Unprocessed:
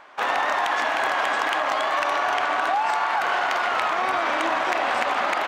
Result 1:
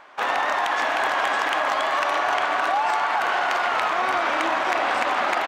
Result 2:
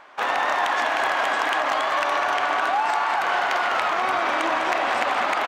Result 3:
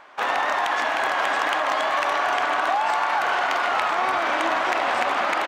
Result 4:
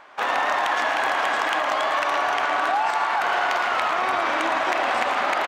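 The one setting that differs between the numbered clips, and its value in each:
repeating echo, delay time: 614, 202, 1,005, 112 milliseconds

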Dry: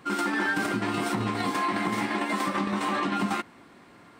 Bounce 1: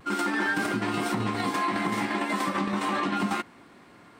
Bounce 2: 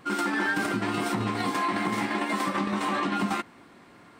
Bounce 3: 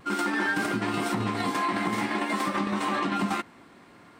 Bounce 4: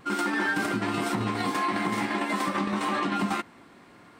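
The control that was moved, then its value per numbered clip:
pitch vibrato, speed: 0.34, 2.3, 0.51, 0.79 Hertz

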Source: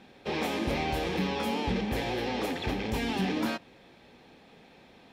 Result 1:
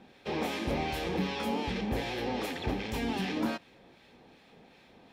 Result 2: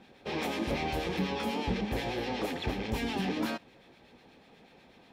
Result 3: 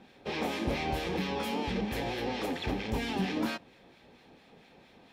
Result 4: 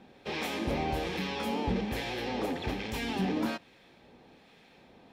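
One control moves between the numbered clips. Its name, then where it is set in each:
two-band tremolo in antiphase, speed: 2.6, 8.2, 4.4, 1.2 Hertz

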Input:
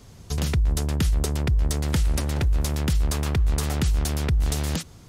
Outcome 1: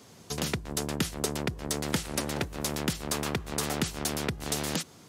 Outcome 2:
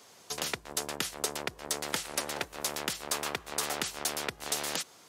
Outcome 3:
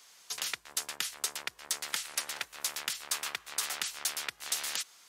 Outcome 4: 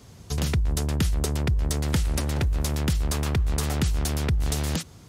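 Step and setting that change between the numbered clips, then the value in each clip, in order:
high-pass filter, corner frequency: 210, 540, 1,400, 55 Hertz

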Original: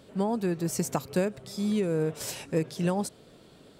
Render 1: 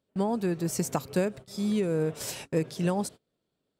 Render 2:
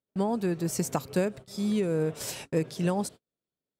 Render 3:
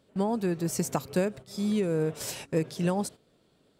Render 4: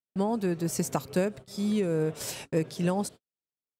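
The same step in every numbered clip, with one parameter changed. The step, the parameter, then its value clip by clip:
noise gate, range: −27, −40, −12, −54 decibels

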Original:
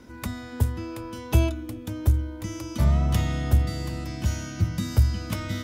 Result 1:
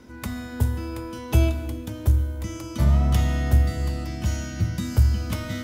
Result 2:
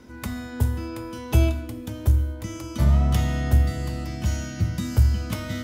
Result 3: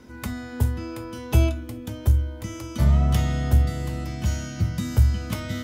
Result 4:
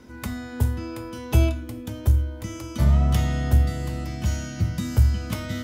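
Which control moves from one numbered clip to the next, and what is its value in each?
reverb whose tail is shaped and stops, gate: 430, 270, 90, 140 milliseconds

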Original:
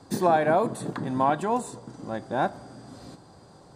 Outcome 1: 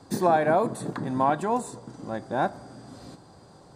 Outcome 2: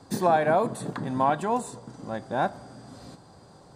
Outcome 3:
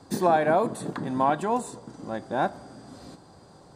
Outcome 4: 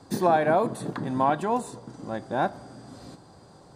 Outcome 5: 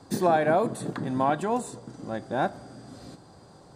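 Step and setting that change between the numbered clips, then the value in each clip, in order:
dynamic equaliser, frequency: 3,000, 330, 120, 7,800, 960 Hertz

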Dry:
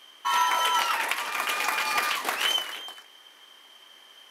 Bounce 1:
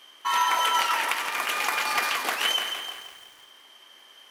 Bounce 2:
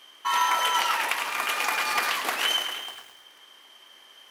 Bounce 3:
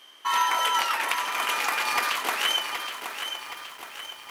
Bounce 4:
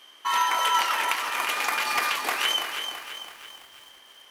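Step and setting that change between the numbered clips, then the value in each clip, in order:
feedback echo at a low word length, delay time: 169, 106, 771, 332 milliseconds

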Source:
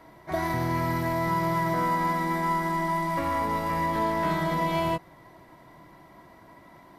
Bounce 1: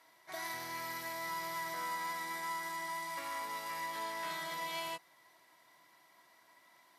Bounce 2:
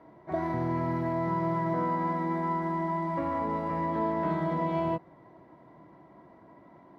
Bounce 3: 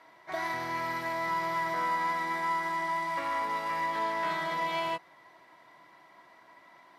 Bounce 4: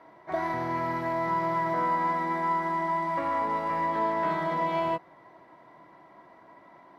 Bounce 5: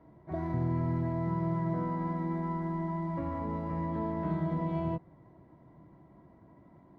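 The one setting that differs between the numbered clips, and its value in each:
resonant band-pass, frequency: 7,800, 330, 2,500, 850, 120 Hertz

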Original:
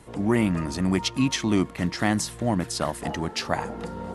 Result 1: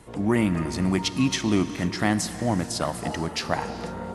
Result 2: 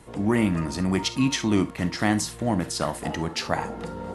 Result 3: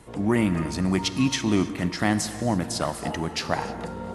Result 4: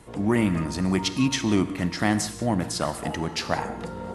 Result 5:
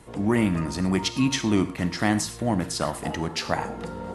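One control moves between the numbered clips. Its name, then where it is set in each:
reverb whose tail is shaped and stops, gate: 530, 90, 340, 210, 140 milliseconds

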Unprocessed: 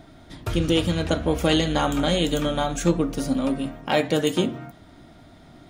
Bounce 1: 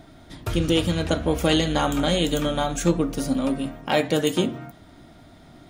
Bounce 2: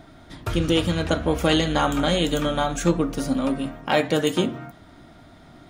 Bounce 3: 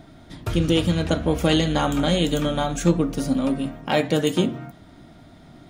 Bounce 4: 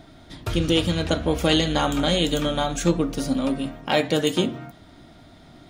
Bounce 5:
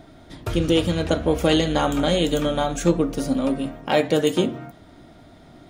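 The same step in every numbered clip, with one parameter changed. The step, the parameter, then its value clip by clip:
parametric band, centre frequency: 15,000, 1,300, 170, 4,000, 470 Hertz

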